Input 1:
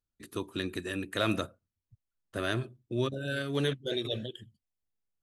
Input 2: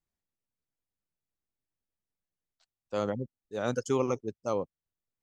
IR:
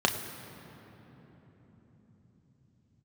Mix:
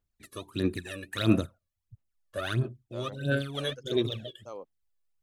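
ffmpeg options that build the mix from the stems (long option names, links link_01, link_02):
-filter_complex "[0:a]aphaser=in_gain=1:out_gain=1:delay=1.8:decay=0.79:speed=1.5:type=sinusoidal,volume=-4dB,asplit=2[link_01][link_02];[1:a]highpass=330,volume=-4dB[link_03];[link_02]apad=whole_len=230235[link_04];[link_03][link_04]sidechaincompress=threshold=-36dB:ratio=10:attack=6.1:release=787[link_05];[link_01][link_05]amix=inputs=2:normalize=0"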